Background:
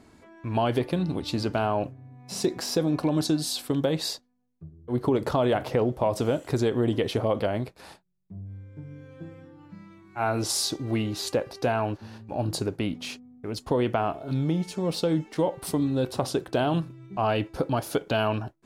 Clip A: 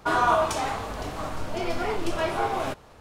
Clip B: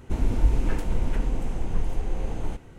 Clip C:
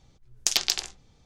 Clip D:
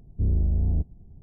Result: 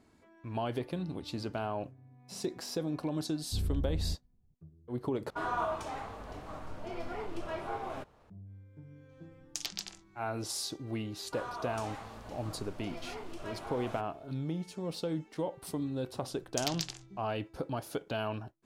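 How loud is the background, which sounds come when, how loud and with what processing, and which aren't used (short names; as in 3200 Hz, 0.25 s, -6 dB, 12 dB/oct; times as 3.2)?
background -10 dB
3.33 add D -9 dB + per-bin expansion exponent 1.5
5.3 replace with A -11 dB + high shelf 2900 Hz -8 dB
9.09 add C -14.5 dB
11.27 add A -15.5 dB + limiter -17 dBFS
16.11 add C -12 dB
not used: B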